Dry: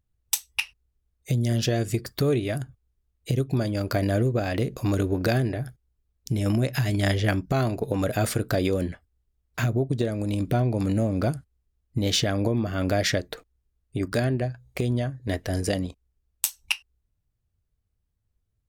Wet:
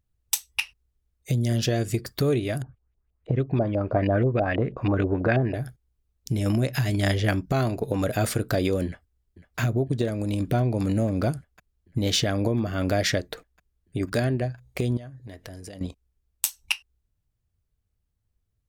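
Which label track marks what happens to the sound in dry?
2.620000	5.540000	LFO low-pass saw up 6.2 Hz 580–3000 Hz
8.860000	9.590000	echo throw 0.5 s, feedback 80%, level -15.5 dB
14.970000	15.810000	compressor, threshold -38 dBFS

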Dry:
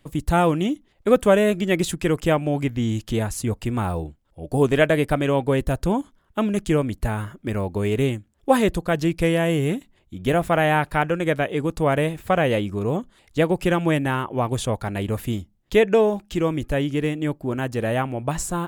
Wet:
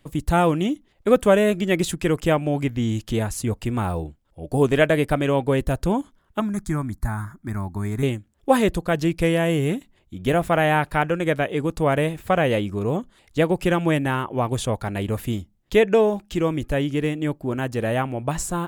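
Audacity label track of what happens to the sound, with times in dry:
6.400000	8.030000	fixed phaser centre 1200 Hz, stages 4

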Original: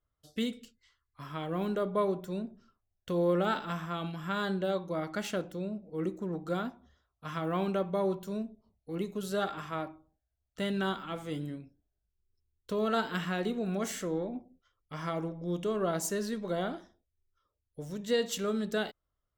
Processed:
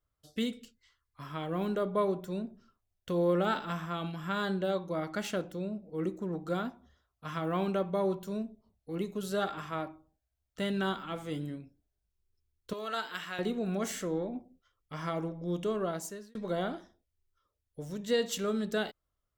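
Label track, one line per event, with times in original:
12.730000	13.390000	HPF 1300 Hz 6 dB/oct
15.690000	16.350000	fade out

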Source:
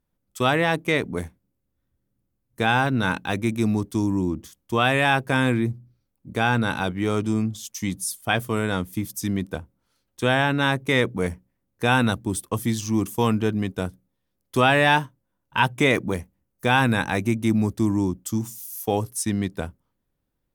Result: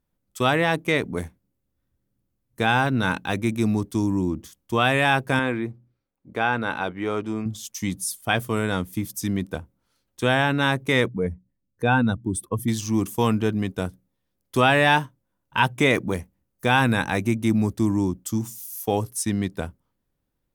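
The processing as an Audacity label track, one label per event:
5.390000	7.460000	tone controls bass -10 dB, treble -13 dB
11.080000	12.680000	spectral contrast raised exponent 1.6

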